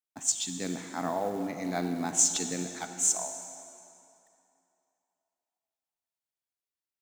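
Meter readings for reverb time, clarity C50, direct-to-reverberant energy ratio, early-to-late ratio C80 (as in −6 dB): 2.8 s, 7.0 dB, 7.0 dB, 8.0 dB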